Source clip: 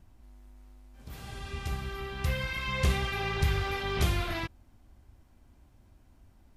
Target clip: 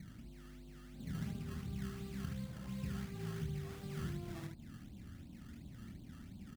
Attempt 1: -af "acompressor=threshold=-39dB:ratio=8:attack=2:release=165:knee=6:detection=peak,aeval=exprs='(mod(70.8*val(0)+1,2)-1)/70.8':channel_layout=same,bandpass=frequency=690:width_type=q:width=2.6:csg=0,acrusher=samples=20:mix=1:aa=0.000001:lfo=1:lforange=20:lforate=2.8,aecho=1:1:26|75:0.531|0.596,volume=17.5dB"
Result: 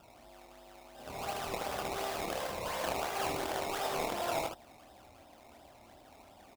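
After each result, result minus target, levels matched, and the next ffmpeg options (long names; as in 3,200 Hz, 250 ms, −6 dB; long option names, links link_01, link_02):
250 Hz band −12.0 dB; downward compressor: peak gain reduction −7.5 dB
-af "acompressor=threshold=-39dB:ratio=8:attack=2:release=165:knee=6:detection=peak,aeval=exprs='(mod(70.8*val(0)+1,2)-1)/70.8':channel_layout=same,bandpass=frequency=180:width_type=q:width=2.6:csg=0,acrusher=samples=20:mix=1:aa=0.000001:lfo=1:lforange=20:lforate=2.8,aecho=1:1:26|75:0.531|0.596,volume=17.5dB"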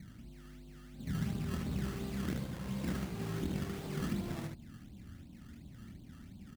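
downward compressor: peak gain reduction −7.5 dB
-af "acompressor=threshold=-47.5dB:ratio=8:attack=2:release=165:knee=6:detection=peak,aeval=exprs='(mod(70.8*val(0)+1,2)-1)/70.8':channel_layout=same,bandpass=frequency=180:width_type=q:width=2.6:csg=0,acrusher=samples=20:mix=1:aa=0.000001:lfo=1:lforange=20:lforate=2.8,aecho=1:1:26|75:0.531|0.596,volume=17.5dB"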